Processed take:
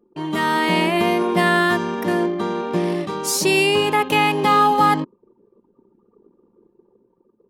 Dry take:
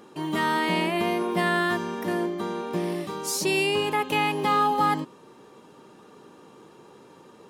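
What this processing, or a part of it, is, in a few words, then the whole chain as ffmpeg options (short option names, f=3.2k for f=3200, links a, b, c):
voice memo with heavy noise removal: -af "anlmdn=0.631,dynaudnorm=f=130:g=9:m=3.5dB,volume=3.5dB"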